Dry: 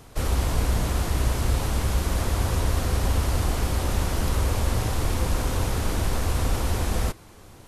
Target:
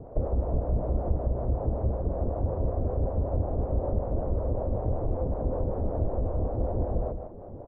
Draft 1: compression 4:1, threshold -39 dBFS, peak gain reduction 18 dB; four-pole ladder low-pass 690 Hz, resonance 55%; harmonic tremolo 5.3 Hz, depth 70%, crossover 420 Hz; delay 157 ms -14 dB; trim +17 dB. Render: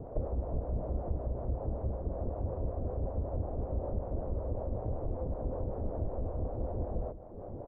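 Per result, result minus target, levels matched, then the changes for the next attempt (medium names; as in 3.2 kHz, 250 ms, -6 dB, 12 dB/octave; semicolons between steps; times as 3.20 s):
compression: peak gain reduction +6.5 dB; echo-to-direct -6.5 dB
change: compression 4:1, threshold -30.5 dBFS, peak gain reduction 12 dB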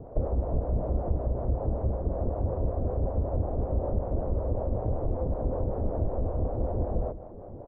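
echo-to-direct -6.5 dB
change: delay 157 ms -7.5 dB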